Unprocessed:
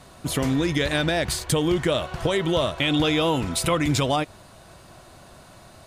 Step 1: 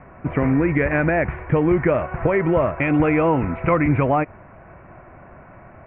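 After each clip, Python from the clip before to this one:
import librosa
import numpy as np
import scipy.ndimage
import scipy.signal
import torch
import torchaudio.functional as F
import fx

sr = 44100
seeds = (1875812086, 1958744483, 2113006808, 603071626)

y = scipy.signal.sosfilt(scipy.signal.butter(12, 2400.0, 'lowpass', fs=sr, output='sos'), x)
y = F.gain(torch.from_numpy(y), 4.5).numpy()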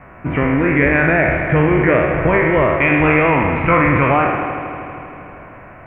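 y = fx.spec_trails(x, sr, decay_s=1.09)
y = fx.high_shelf(y, sr, hz=2100.0, db=11.5)
y = fx.echo_heads(y, sr, ms=79, heads='all three', feedback_pct=70, wet_db=-15.5)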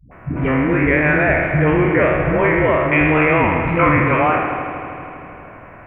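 y = fx.dispersion(x, sr, late='highs', ms=115.0, hz=310.0)
y = F.gain(torch.from_numpy(y), -1.0).numpy()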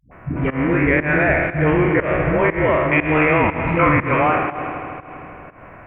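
y = fx.volume_shaper(x, sr, bpm=120, per_beat=1, depth_db=-22, release_ms=173.0, shape='fast start')
y = y + 10.0 ** (-16.5 / 20.0) * np.pad(y, (int(287 * sr / 1000.0), 0))[:len(y)]
y = F.gain(torch.from_numpy(y), -1.0).numpy()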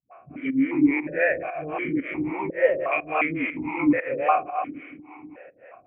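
y = fx.harmonic_tremolo(x, sr, hz=3.6, depth_pct=100, crossover_hz=410.0)
y = fx.vowel_held(y, sr, hz=2.8)
y = F.gain(torch.from_numpy(y), 7.0).numpy()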